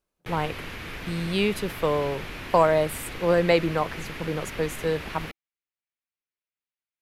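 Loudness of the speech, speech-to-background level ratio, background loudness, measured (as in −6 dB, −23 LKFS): −26.0 LKFS, 11.0 dB, −37.0 LKFS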